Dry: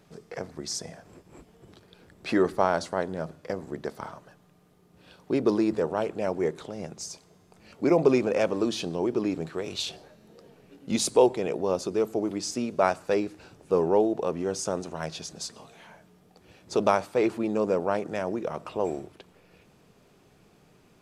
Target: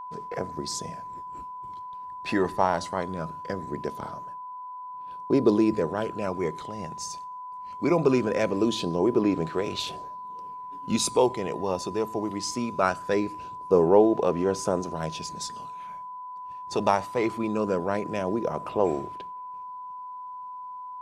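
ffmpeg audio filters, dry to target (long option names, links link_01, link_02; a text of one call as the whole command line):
ffmpeg -i in.wav -af "agate=range=-33dB:threshold=-46dB:ratio=3:detection=peak,aphaser=in_gain=1:out_gain=1:delay=1.1:decay=0.4:speed=0.21:type=sinusoidal,aeval=exprs='val(0)+0.0158*sin(2*PI*1000*n/s)':channel_layout=same" out.wav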